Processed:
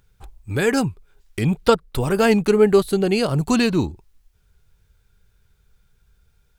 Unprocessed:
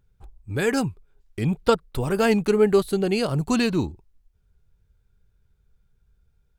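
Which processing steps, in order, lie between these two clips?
mismatched tape noise reduction encoder only; gain +3.5 dB

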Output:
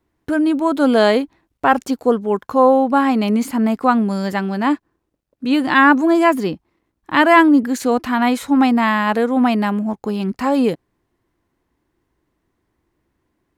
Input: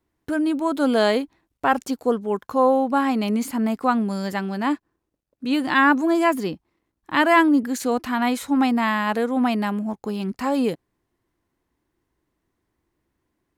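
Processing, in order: high shelf 4300 Hz -5 dB; gain +5.5 dB

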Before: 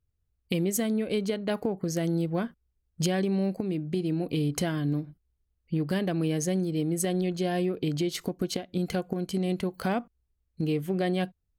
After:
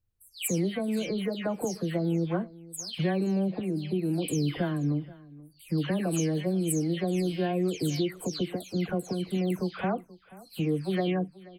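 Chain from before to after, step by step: spectral delay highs early, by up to 0.296 s; on a send: echo 0.481 s -20.5 dB

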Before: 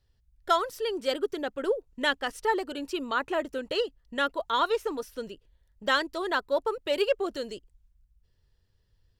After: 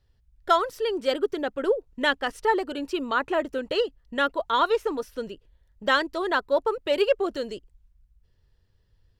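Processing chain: high shelf 4300 Hz -7 dB; gain +4 dB

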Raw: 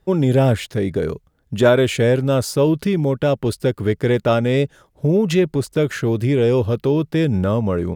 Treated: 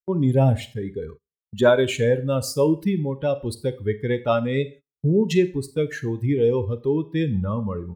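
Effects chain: per-bin expansion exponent 2; Schroeder reverb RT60 0.38 s, combs from 30 ms, DRR 13 dB; gate -40 dBFS, range -27 dB

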